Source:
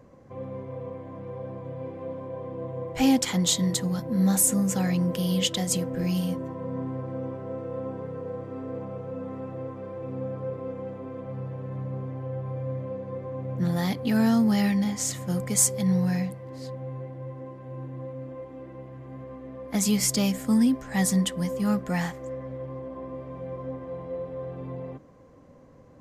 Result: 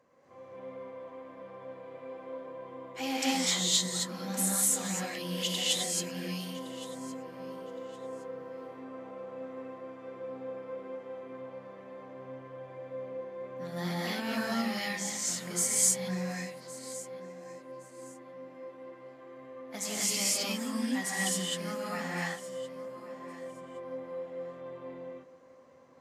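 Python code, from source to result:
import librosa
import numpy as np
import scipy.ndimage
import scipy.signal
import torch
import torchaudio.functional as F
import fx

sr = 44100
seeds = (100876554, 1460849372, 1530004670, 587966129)

y = fx.highpass(x, sr, hz=1100.0, slope=6)
y = fx.high_shelf(y, sr, hz=8100.0, db=-7.0)
y = fx.echo_feedback(y, sr, ms=1115, feedback_pct=24, wet_db=-18.5)
y = fx.rev_gated(y, sr, seeds[0], gate_ms=290, shape='rising', drr_db=-6.5)
y = F.gain(torch.from_numpy(y), -6.0).numpy()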